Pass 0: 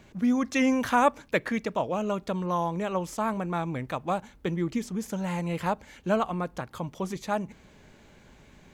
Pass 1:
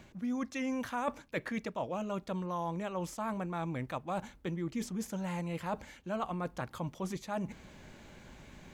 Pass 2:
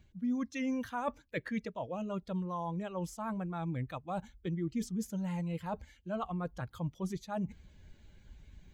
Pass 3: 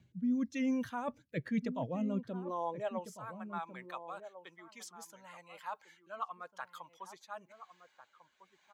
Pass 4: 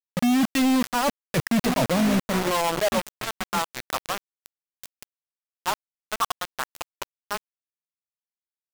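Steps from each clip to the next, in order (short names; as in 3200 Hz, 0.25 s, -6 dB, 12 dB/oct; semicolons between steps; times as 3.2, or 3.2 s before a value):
notch 430 Hz, Q 12; reverse; compressor 4:1, threshold -36 dBFS, peak gain reduction 15.5 dB; reverse; gain +1.5 dB
per-bin expansion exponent 1.5; low shelf 200 Hz +7 dB
high-pass sweep 130 Hz -> 1000 Hz, 1.85–3.19; rotary speaker horn 1 Hz; outdoor echo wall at 240 m, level -11 dB
companded quantiser 2-bit; gain +6.5 dB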